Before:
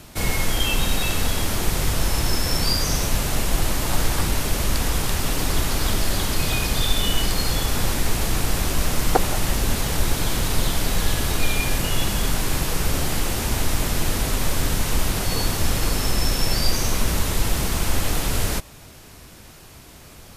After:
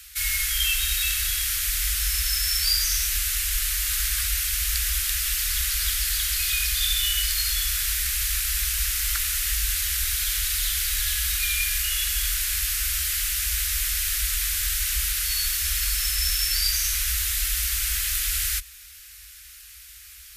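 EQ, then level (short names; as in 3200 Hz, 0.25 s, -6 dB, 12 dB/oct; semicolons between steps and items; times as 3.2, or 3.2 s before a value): HPF 50 Hz 12 dB/oct; inverse Chebyshev band-stop 110–860 Hz, stop band 40 dB; high shelf 11000 Hz +11 dB; 0.0 dB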